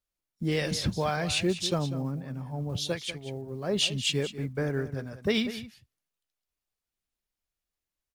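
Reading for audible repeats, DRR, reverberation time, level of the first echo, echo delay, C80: 1, no reverb, no reverb, -13.0 dB, 194 ms, no reverb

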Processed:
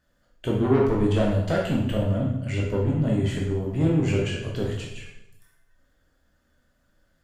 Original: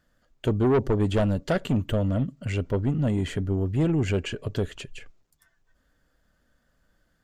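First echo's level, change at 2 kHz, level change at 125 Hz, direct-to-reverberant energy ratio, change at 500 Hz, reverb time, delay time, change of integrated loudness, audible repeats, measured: no echo, +1.5 dB, +1.5 dB, -3.0 dB, +1.5 dB, 0.85 s, no echo, +1.5 dB, no echo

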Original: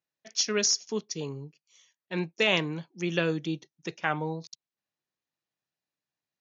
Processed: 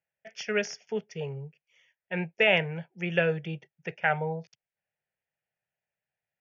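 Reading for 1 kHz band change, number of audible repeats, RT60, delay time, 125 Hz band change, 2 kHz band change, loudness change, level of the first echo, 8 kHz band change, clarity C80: +1.5 dB, no echo, no reverb, no echo, +1.0 dB, +3.5 dB, 0.0 dB, no echo, no reading, no reverb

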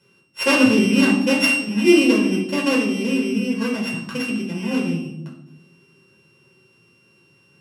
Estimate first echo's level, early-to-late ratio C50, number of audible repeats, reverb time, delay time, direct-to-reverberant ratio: no echo, 6.0 dB, no echo, 0.90 s, no echo, -1.5 dB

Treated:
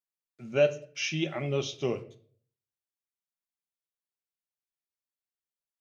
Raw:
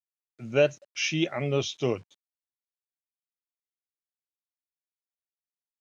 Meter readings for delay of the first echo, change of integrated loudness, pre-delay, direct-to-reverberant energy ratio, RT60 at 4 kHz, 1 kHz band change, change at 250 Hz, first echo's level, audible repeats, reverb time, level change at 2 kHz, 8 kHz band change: no echo, -2.5 dB, 5 ms, 7.5 dB, 0.40 s, -3.5 dB, -4.0 dB, no echo, no echo, 0.50 s, -3.5 dB, no reading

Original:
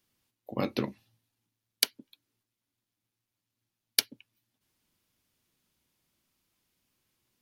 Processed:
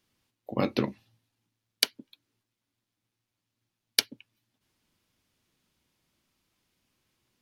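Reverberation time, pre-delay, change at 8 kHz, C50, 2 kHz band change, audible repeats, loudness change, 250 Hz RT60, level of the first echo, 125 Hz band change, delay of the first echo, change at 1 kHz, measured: no reverb, no reverb, -1.0 dB, no reverb, +3.0 dB, no echo, +2.0 dB, no reverb, no echo, +3.5 dB, no echo, +3.5 dB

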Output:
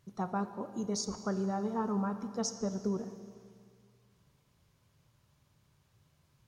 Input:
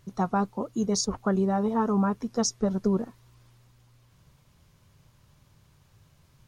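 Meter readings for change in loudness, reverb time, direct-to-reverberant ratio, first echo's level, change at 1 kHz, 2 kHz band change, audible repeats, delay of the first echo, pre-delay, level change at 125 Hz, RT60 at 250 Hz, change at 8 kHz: -8.5 dB, 2.1 s, 9.0 dB, no echo, -8.0 dB, -8.0 dB, no echo, no echo, 20 ms, -8.5 dB, 2.1 s, -8.0 dB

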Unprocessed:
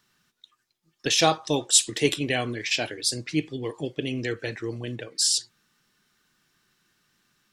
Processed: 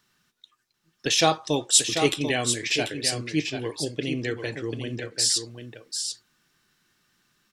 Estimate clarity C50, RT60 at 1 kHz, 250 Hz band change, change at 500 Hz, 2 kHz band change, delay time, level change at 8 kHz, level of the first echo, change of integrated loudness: no reverb, no reverb, +1.0 dB, +1.0 dB, +0.5 dB, 740 ms, +0.5 dB, -7.5 dB, +0.5 dB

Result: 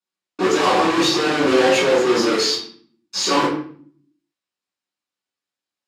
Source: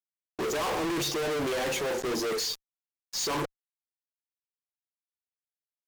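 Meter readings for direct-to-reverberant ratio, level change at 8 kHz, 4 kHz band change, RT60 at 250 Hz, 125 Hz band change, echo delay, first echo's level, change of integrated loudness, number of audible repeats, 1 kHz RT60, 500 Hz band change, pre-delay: -10.0 dB, +7.5 dB, +12.0 dB, 0.85 s, +7.5 dB, no echo, no echo, +12.5 dB, no echo, 0.50 s, +12.5 dB, 3 ms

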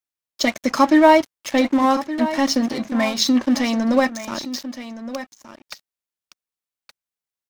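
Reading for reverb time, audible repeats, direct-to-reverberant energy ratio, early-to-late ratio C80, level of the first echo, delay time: no reverb, 1, no reverb, no reverb, -13.0 dB, 1169 ms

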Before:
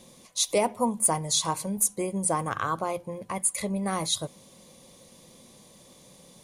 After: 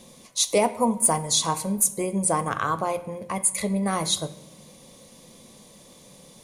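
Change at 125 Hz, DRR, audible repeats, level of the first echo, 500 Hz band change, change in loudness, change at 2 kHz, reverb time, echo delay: +3.5 dB, 11.5 dB, no echo, no echo, +3.5 dB, +3.5 dB, +3.5 dB, 0.90 s, no echo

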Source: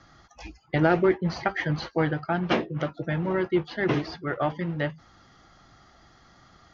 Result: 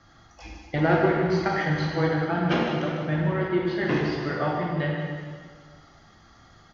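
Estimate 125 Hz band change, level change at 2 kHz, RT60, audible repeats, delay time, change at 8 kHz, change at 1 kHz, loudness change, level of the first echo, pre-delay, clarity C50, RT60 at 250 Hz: +3.0 dB, +1.5 dB, 1.7 s, 1, 153 ms, no reading, +2.0 dB, +1.5 dB, -9.5 dB, 15 ms, -0.5 dB, 1.8 s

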